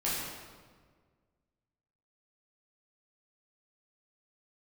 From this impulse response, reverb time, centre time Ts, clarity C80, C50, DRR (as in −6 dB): 1.6 s, 101 ms, 1.0 dB, −1.5 dB, −8.5 dB